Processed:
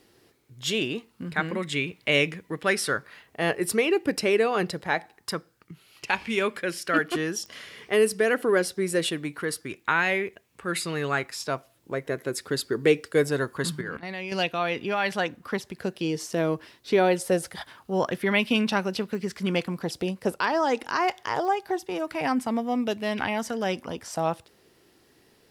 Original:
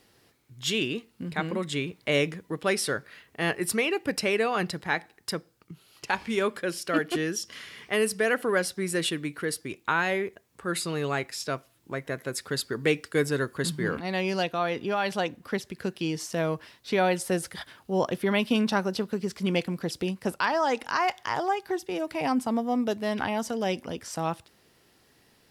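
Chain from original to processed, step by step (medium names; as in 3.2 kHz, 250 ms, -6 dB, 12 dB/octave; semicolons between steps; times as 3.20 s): 13.81–14.32 s: level held to a coarse grid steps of 12 dB; clicks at 7.46/19.15/21.45 s, -28 dBFS; sweeping bell 0.24 Hz 340–2600 Hz +7 dB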